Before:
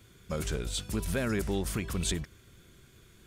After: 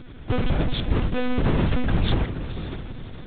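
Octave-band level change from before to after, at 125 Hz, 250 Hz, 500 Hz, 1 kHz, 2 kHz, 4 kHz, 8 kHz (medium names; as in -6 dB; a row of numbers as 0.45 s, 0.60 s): +11.0 dB, +9.0 dB, +6.0 dB, +11.0 dB, +6.0 dB, +5.0 dB, under -40 dB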